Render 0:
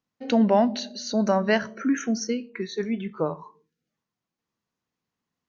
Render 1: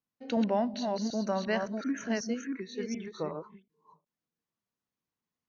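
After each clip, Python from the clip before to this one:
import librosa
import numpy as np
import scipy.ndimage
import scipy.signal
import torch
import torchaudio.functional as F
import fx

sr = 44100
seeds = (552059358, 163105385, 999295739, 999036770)

y = fx.reverse_delay(x, sr, ms=368, wet_db=-4)
y = fx.end_taper(y, sr, db_per_s=270.0)
y = y * 10.0 ** (-9.0 / 20.0)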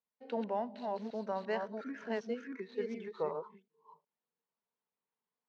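y = scipy.signal.medfilt(x, 9)
y = fx.rider(y, sr, range_db=3, speed_s=0.5)
y = fx.cabinet(y, sr, low_hz=220.0, low_slope=12, high_hz=5000.0, hz=(310.0, 440.0, 900.0), db=(-9, 7, 7))
y = y * 10.0 ** (-6.0 / 20.0)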